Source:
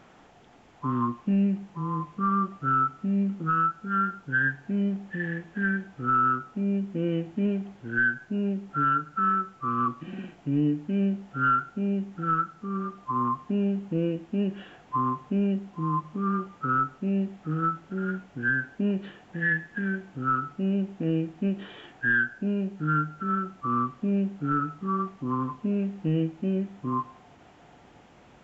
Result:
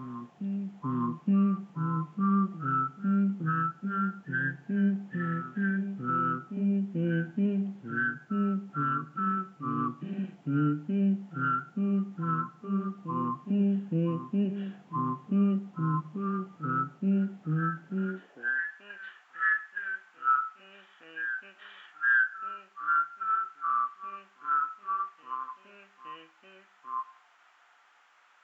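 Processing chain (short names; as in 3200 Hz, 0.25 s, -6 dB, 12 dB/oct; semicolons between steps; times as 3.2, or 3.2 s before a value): high-pass sweep 160 Hz -> 1300 Hz, 17.95–18.71; reverse echo 0.867 s -10 dB; gain -6.5 dB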